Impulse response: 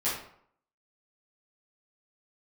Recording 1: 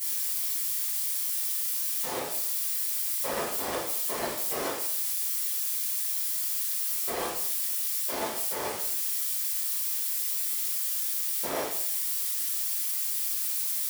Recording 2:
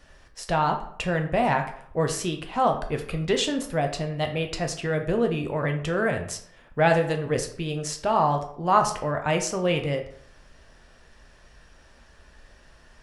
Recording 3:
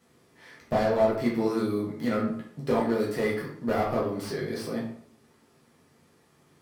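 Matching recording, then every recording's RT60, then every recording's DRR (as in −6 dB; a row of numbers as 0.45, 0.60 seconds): 1; 0.65, 0.65, 0.65 seconds; −11.5, 4.0, −5.0 decibels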